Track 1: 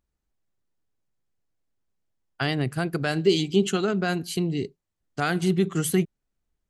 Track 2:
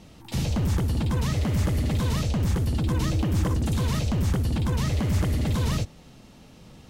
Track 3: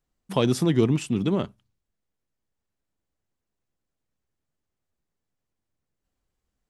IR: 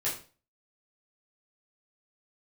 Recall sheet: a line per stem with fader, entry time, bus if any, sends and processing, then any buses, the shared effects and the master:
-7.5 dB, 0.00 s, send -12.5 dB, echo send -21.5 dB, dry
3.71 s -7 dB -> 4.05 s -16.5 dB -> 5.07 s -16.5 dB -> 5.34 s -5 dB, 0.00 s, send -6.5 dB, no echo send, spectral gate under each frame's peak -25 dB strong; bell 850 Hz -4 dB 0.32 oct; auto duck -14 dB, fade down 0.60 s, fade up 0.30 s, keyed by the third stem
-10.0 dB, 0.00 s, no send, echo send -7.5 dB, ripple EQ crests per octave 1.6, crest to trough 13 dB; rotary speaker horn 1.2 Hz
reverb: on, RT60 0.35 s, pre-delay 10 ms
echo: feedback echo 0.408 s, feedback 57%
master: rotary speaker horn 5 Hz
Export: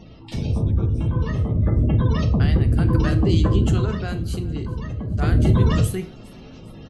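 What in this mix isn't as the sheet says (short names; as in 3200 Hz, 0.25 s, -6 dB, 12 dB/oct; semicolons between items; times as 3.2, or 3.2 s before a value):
stem 2 -7.0 dB -> +2.5 dB; stem 3 -10.0 dB -> -21.0 dB; master: missing rotary speaker horn 5 Hz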